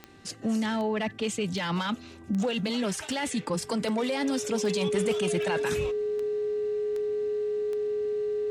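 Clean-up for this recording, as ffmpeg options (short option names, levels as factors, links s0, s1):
-af "adeclick=t=4,bandreject=f=391.1:t=h:w=4,bandreject=f=782.2:t=h:w=4,bandreject=f=1173.3:t=h:w=4,bandreject=f=1564.4:t=h:w=4,bandreject=f=1955.5:t=h:w=4,bandreject=f=420:w=30"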